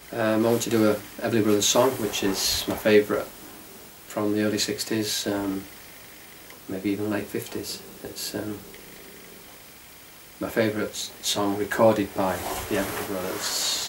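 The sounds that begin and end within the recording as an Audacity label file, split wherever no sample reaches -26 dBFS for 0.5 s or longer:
4.100000	5.580000	sound
6.700000	8.520000	sound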